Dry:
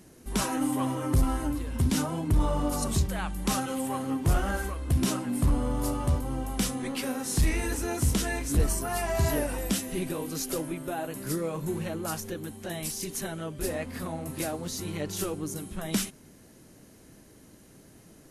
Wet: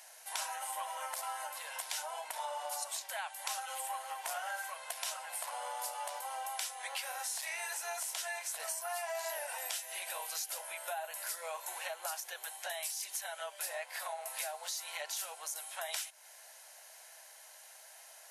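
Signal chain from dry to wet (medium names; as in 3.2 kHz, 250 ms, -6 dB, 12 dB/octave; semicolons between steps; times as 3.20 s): steep high-pass 650 Hz 48 dB/octave; band-stop 1.2 kHz, Q 5.1; compression 5:1, threshold -43 dBFS, peak gain reduction 14.5 dB; trim +5.5 dB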